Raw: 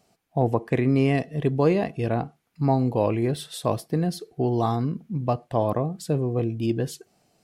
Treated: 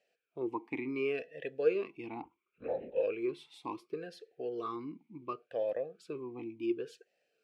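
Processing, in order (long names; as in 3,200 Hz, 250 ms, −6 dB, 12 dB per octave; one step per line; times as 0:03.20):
0:02.22–0:03.03: linear-prediction vocoder at 8 kHz whisper
tilt shelving filter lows −7 dB, about 740 Hz
formant filter swept between two vowels e-u 0.7 Hz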